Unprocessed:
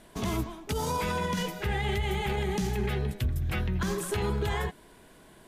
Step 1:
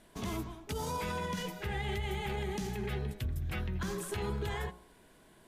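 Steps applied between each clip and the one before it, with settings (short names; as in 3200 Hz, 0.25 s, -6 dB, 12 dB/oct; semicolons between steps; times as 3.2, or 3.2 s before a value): de-hum 60.03 Hz, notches 24; gain -6 dB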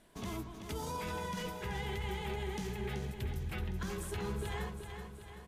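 feedback echo 0.38 s, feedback 54%, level -7.5 dB; gain -3.5 dB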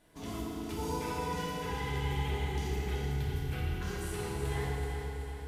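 FDN reverb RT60 2.6 s, low-frequency decay 1.2×, high-frequency decay 0.85×, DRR -6 dB; gain -4 dB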